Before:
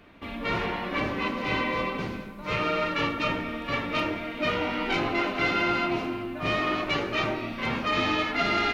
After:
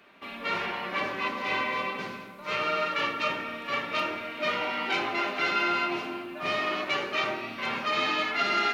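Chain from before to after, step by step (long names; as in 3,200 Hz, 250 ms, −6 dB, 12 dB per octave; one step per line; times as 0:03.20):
high-pass filter 670 Hz 6 dB per octave
rectangular room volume 2,700 cubic metres, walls furnished, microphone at 1.2 metres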